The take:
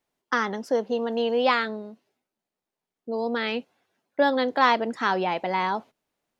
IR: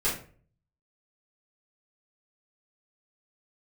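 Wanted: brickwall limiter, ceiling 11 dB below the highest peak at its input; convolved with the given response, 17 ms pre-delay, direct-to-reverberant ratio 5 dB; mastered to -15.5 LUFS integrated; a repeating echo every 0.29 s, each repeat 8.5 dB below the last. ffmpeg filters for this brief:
-filter_complex "[0:a]alimiter=limit=-18dB:level=0:latency=1,aecho=1:1:290|580|870|1160:0.376|0.143|0.0543|0.0206,asplit=2[a][b];[1:a]atrim=start_sample=2205,adelay=17[c];[b][c]afir=irnorm=-1:irlink=0,volume=-14.5dB[d];[a][d]amix=inputs=2:normalize=0,volume=12dB"

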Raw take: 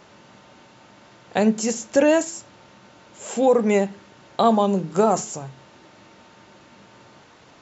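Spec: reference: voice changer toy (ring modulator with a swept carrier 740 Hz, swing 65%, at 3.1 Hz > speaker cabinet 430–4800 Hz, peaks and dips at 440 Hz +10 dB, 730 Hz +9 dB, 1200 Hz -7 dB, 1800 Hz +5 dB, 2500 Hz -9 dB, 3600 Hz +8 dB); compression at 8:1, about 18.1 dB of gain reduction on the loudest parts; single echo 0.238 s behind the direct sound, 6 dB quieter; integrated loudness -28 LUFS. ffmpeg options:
-af "acompressor=threshold=-32dB:ratio=8,aecho=1:1:238:0.501,aeval=exprs='val(0)*sin(2*PI*740*n/s+740*0.65/3.1*sin(2*PI*3.1*n/s))':c=same,highpass=430,equalizer=f=440:t=q:w=4:g=10,equalizer=f=730:t=q:w=4:g=9,equalizer=f=1.2k:t=q:w=4:g=-7,equalizer=f=1.8k:t=q:w=4:g=5,equalizer=f=2.5k:t=q:w=4:g=-9,equalizer=f=3.6k:t=q:w=4:g=8,lowpass=f=4.8k:w=0.5412,lowpass=f=4.8k:w=1.3066,volume=10dB"

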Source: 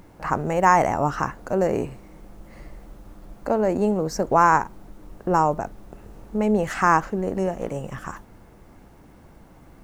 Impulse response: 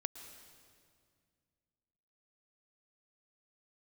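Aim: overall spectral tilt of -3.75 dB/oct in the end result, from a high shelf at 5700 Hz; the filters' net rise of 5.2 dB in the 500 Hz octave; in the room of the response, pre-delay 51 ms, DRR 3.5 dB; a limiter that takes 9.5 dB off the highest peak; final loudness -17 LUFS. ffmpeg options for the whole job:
-filter_complex "[0:a]equalizer=f=500:t=o:g=6.5,highshelf=f=5.7k:g=-7,alimiter=limit=-11dB:level=0:latency=1,asplit=2[a][b];[1:a]atrim=start_sample=2205,adelay=51[c];[b][c]afir=irnorm=-1:irlink=0,volume=-2dB[d];[a][d]amix=inputs=2:normalize=0,volume=4dB"

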